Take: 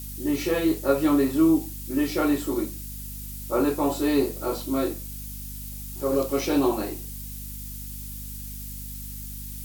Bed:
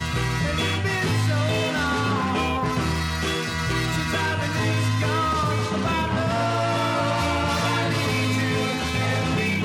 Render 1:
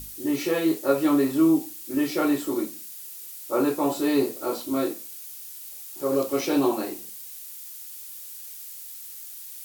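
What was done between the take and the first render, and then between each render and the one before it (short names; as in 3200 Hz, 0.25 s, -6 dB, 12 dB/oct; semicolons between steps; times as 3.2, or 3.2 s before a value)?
notches 50/100/150/200/250 Hz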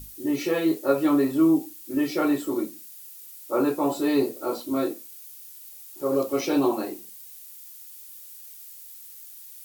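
denoiser 6 dB, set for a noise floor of -41 dBFS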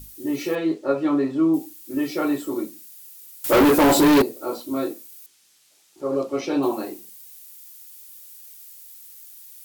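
0.55–1.54 air absorption 110 m; 3.44–4.22 sample leveller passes 5; 5.26–6.63 air absorption 73 m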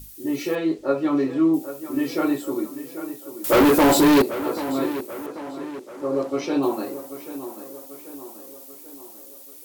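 tape echo 0.788 s, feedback 57%, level -11 dB, low-pass 2900 Hz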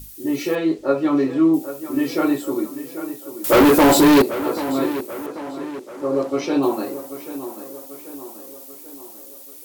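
gain +3 dB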